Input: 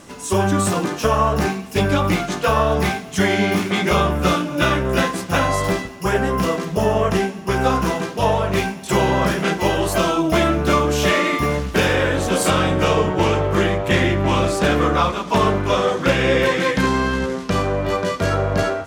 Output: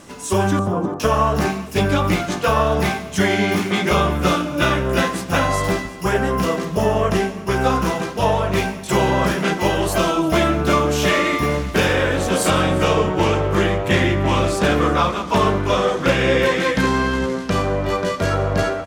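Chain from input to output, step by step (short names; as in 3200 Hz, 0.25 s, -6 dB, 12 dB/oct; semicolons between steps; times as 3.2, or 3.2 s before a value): 0.59–1 inverse Chebyshev low-pass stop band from 3800 Hz, stop band 60 dB; echo 0.349 s -19 dB; reverb RT60 0.45 s, pre-delay 0.1 s, DRR 18 dB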